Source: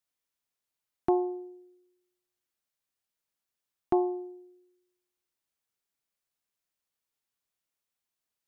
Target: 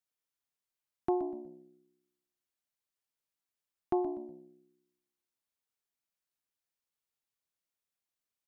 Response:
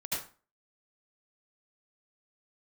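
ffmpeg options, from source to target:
-filter_complex "[0:a]asplit=4[a][b][c][d];[b]adelay=122,afreqshift=-65,volume=-14dB[e];[c]adelay=244,afreqshift=-130,volume=-24.2dB[f];[d]adelay=366,afreqshift=-195,volume=-34.3dB[g];[a][e][f][g]amix=inputs=4:normalize=0,volume=-5dB"

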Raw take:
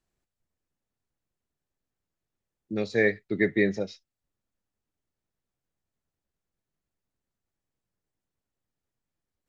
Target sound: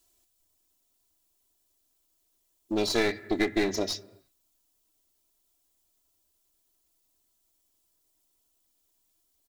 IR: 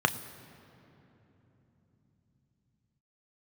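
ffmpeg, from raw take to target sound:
-filter_complex "[0:a]aecho=1:1:3:0.73,acompressor=threshold=-22dB:ratio=10,crystalizer=i=6.5:c=0,aeval=exprs='clip(val(0),-1,0.0299)':c=same,asplit=2[a][b];[1:a]atrim=start_sample=2205,afade=t=out:st=0.41:d=0.01,atrim=end_sample=18522,lowpass=3k[c];[b][c]afir=irnorm=-1:irlink=0,volume=-17dB[d];[a][d]amix=inputs=2:normalize=0"

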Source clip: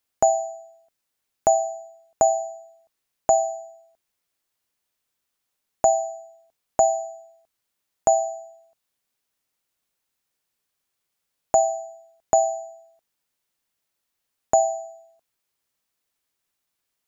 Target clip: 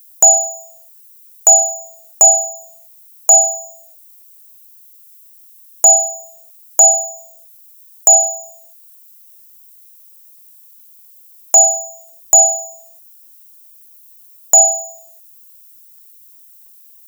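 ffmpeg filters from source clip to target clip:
-af "crystalizer=i=7.5:c=0,aemphasis=mode=production:type=50kf,apsyclip=1dB,volume=-1.5dB"

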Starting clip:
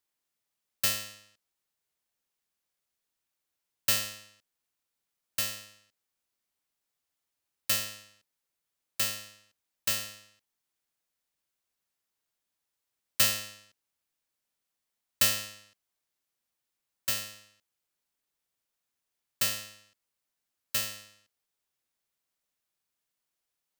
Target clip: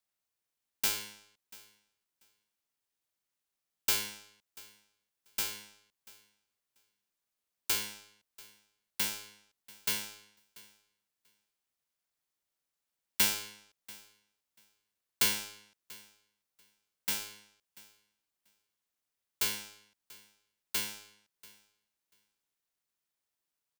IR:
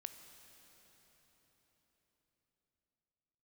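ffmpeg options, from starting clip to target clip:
-af "aeval=exprs='val(0)*sin(2*PI*310*n/s)':c=same,aecho=1:1:688|1376:0.0794|0.0119"

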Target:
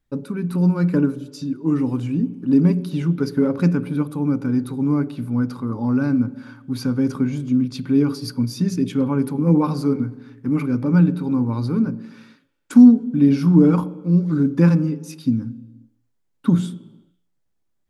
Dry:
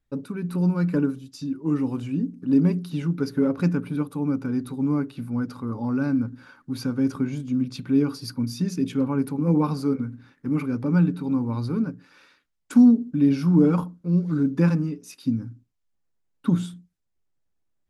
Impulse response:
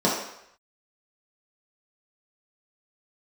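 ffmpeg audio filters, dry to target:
-filter_complex "[0:a]asplit=2[a][b];[1:a]atrim=start_sample=2205,afade=t=out:st=0.37:d=0.01,atrim=end_sample=16758,asetrate=25137,aresample=44100[c];[b][c]afir=irnorm=-1:irlink=0,volume=-34dB[d];[a][d]amix=inputs=2:normalize=0,volume=3dB"

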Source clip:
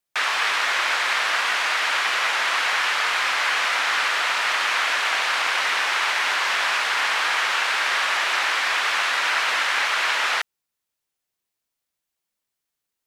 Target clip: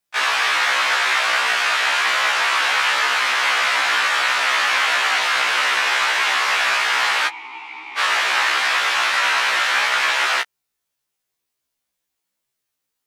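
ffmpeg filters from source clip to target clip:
-filter_complex "[0:a]asplit=3[a][b][c];[a]afade=t=out:st=7.27:d=0.02[d];[b]asplit=3[e][f][g];[e]bandpass=f=300:t=q:w=8,volume=0dB[h];[f]bandpass=f=870:t=q:w=8,volume=-6dB[i];[g]bandpass=f=2.24k:t=q:w=8,volume=-9dB[j];[h][i][j]amix=inputs=3:normalize=0,afade=t=in:st=7.27:d=0.02,afade=t=out:st=7.97:d=0.02[k];[c]afade=t=in:st=7.97:d=0.02[l];[d][k][l]amix=inputs=3:normalize=0,afftfilt=real='re*1.73*eq(mod(b,3),0)':imag='im*1.73*eq(mod(b,3),0)':win_size=2048:overlap=0.75,volume=6dB"

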